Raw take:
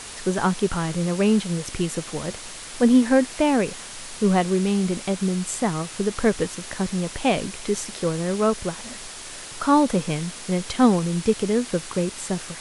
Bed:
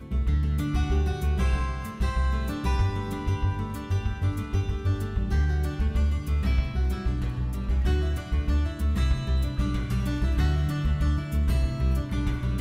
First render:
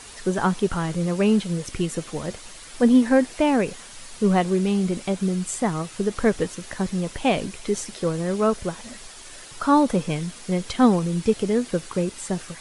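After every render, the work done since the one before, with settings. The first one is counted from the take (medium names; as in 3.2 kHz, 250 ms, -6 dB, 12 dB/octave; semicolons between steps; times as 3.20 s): noise reduction 7 dB, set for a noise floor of -38 dBFS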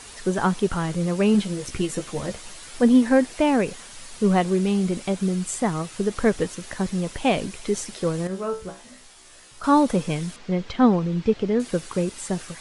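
1.33–2.79 s: doubling 15 ms -6 dB; 8.27–9.64 s: feedback comb 63 Hz, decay 0.32 s, mix 90%; 10.36–11.60 s: distance through air 170 m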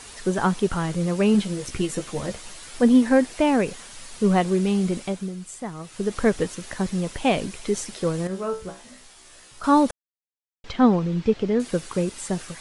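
4.95–6.15 s: dip -9.5 dB, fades 0.37 s; 9.91–10.64 s: mute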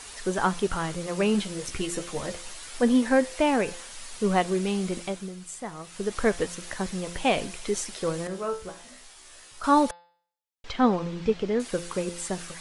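peaking EQ 150 Hz -7 dB 2.7 oct; de-hum 172.9 Hz, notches 29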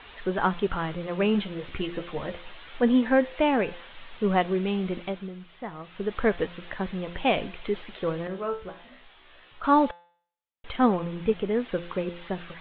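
steep low-pass 3.6 kHz 72 dB/octave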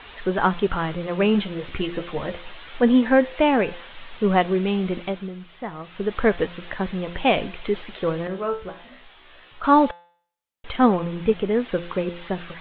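trim +4.5 dB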